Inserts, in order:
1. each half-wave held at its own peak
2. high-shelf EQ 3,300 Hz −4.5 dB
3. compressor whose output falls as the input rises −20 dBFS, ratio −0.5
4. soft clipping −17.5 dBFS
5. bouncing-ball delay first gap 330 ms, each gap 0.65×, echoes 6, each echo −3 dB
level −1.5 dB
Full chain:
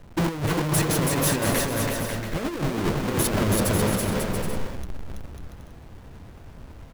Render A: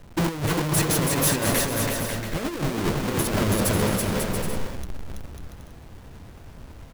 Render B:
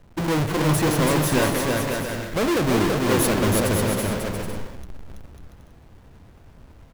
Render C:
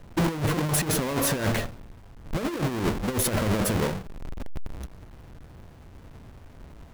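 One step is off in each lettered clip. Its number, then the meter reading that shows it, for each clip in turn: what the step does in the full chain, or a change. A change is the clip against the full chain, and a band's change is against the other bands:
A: 2, 8 kHz band +1.5 dB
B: 3, change in momentary loudness spread −9 LU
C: 5, change in crest factor −4.0 dB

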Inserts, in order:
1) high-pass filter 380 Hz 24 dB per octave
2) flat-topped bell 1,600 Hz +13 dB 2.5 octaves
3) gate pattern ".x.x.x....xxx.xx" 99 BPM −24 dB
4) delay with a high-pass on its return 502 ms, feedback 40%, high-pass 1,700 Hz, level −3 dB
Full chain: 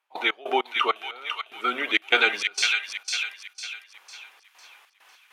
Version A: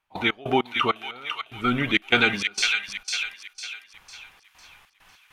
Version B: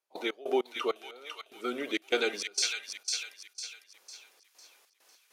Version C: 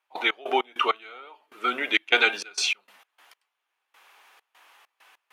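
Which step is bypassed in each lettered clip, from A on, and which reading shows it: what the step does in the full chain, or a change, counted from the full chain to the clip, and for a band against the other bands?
1, 250 Hz band +10.0 dB
2, change in crest factor −3.5 dB
4, echo-to-direct ratio −6.0 dB to none audible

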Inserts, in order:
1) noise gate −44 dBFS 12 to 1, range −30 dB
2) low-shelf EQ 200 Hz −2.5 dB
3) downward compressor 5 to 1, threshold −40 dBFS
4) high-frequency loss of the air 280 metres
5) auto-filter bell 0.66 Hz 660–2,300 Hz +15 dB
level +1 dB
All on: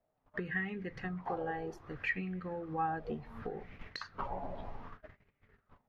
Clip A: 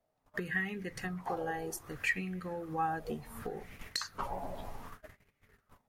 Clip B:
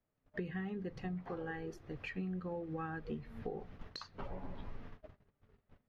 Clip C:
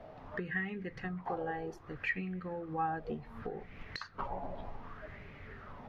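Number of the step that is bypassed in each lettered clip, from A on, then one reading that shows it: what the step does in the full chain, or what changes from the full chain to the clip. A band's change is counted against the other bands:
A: 4, 4 kHz band +8.0 dB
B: 5, 1 kHz band −7.5 dB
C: 1, change in momentary loudness spread +2 LU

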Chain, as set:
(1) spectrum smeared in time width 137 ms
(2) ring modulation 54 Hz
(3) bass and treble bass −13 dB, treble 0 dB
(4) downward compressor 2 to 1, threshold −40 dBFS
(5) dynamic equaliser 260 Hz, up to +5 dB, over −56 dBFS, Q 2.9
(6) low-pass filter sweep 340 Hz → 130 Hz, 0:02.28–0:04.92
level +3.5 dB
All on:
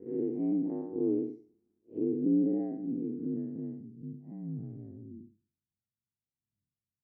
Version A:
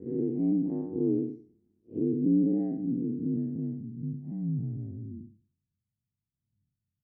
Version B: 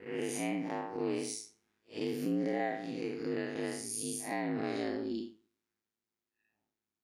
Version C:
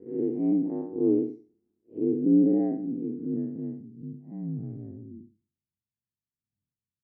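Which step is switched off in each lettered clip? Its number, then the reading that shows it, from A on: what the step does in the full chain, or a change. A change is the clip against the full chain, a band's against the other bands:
3, change in momentary loudness spread −4 LU
6, change in momentary loudness spread −12 LU
4, average gain reduction 4.0 dB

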